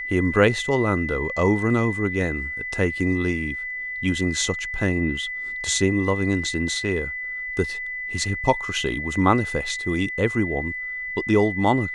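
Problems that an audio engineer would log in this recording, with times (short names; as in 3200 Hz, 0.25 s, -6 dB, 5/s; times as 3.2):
tone 2000 Hz -28 dBFS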